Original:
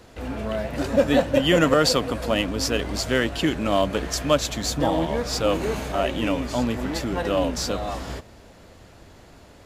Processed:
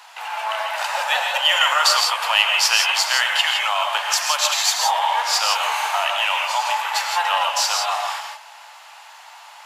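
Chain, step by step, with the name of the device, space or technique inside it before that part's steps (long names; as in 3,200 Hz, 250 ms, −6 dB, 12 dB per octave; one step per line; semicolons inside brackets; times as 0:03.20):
laptop speaker (high-pass filter 390 Hz 24 dB per octave; parametric band 860 Hz +11.5 dB 0.51 octaves; parametric band 2,800 Hz +5 dB 0.43 octaves; brickwall limiter −12.5 dBFS, peak gain reduction 9.5 dB)
high-pass filter 710 Hz 12 dB per octave
high-pass filter 850 Hz 24 dB per octave
0:02.02–0:02.99: dynamic equaliser 2,500 Hz, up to +4 dB, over −40 dBFS, Q 1.2
reverb whose tail is shaped and stops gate 190 ms rising, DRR 2 dB
level +7.5 dB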